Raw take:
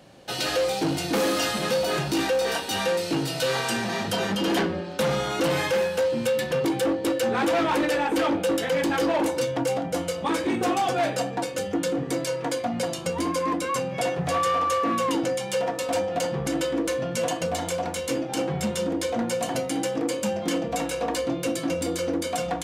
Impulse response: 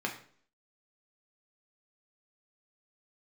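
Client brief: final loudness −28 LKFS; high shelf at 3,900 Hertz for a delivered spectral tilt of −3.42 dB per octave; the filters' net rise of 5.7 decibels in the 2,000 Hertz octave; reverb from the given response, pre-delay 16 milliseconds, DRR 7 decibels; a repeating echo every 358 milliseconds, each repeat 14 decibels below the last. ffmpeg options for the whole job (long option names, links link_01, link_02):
-filter_complex "[0:a]equalizer=frequency=2000:width_type=o:gain=6.5,highshelf=frequency=3900:gain=3,aecho=1:1:358|716:0.2|0.0399,asplit=2[link_01][link_02];[1:a]atrim=start_sample=2205,adelay=16[link_03];[link_02][link_03]afir=irnorm=-1:irlink=0,volume=-12.5dB[link_04];[link_01][link_04]amix=inputs=2:normalize=0,volume=-4.5dB"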